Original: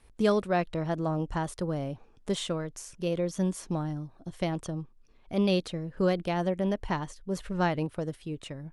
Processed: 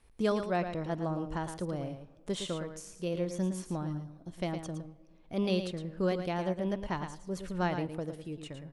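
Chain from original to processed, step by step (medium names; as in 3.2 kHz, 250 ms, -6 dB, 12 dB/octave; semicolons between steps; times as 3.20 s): delay 112 ms -8.5 dB; on a send at -20.5 dB: reverberation RT60 2.2 s, pre-delay 3 ms; on the sum: trim -4.5 dB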